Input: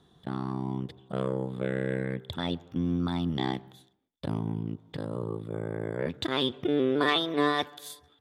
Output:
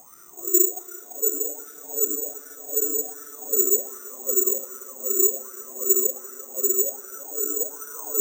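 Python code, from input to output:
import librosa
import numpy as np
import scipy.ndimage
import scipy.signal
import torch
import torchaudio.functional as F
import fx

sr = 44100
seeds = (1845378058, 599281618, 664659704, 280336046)

y = fx.paulstretch(x, sr, seeds[0], factor=22.0, window_s=0.05, from_s=6.63)
y = fx.wah_lfo(y, sr, hz=1.3, low_hz=360.0, high_hz=1400.0, q=14.0)
y = fx.echo_stepped(y, sr, ms=340, hz=1100.0, octaves=0.7, feedback_pct=70, wet_db=0)
y = (np.kron(y[::6], np.eye(6)[0]) * 6)[:len(y)]
y = y * librosa.db_to_amplitude(4.5)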